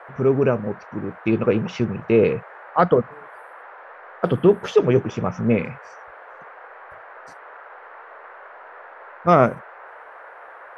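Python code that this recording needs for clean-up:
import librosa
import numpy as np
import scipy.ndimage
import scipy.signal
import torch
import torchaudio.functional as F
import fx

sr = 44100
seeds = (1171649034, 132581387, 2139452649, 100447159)

y = fx.noise_reduce(x, sr, print_start_s=3.72, print_end_s=4.22, reduce_db=22.0)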